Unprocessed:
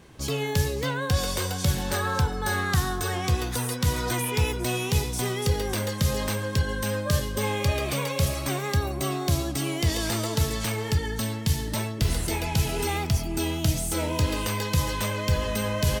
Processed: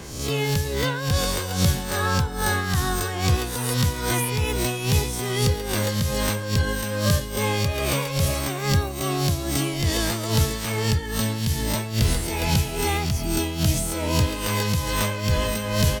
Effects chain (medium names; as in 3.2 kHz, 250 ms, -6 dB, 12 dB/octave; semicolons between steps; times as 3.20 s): reverse spectral sustain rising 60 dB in 0.43 s; tremolo 2.4 Hz, depth 55%; three bands compressed up and down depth 40%; trim +3.5 dB